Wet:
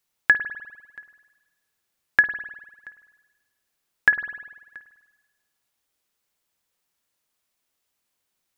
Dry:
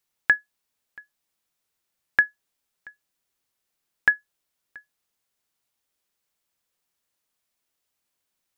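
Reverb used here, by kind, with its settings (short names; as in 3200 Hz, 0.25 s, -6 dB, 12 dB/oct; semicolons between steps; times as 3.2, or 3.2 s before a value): spring tank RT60 1.2 s, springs 50 ms, chirp 25 ms, DRR 9 dB; gain +2 dB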